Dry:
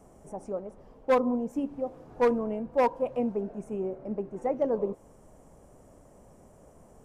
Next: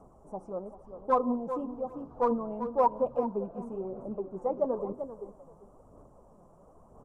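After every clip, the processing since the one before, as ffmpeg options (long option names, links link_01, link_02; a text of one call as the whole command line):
ffmpeg -i in.wav -af "highshelf=frequency=1500:width_type=q:width=3:gain=-9,aecho=1:1:390|780|1170:0.266|0.0532|0.0106,flanger=delay=0:depth=6:regen=41:speed=1:shape=sinusoidal" out.wav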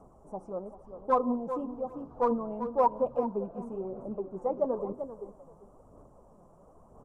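ffmpeg -i in.wav -af anull out.wav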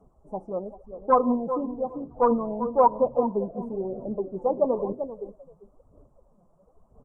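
ffmpeg -i in.wav -af "afftdn=noise_reduction=15:noise_floor=-43,volume=6dB" out.wav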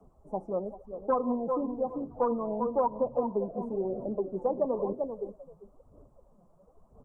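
ffmpeg -i in.wav -filter_complex "[0:a]acrossover=split=110|250|1400[link_01][link_02][link_03][link_04];[link_01]acompressor=threshold=-53dB:ratio=4[link_05];[link_02]acompressor=threshold=-41dB:ratio=4[link_06];[link_03]acompressor=threshold=-26dB:ratio=4[link_07];[link_04]acompressor=threshold=-50dB:ratio=4[link_08];[link_05][link_06][link_07][link_08]amix=inputs=4:normalize=0" out.wav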